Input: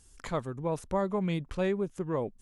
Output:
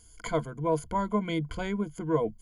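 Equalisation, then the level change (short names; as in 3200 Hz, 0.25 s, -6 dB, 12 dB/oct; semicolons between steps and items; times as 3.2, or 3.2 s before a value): ripple EQ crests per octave 1.8, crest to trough 17 dB; 0.0 dB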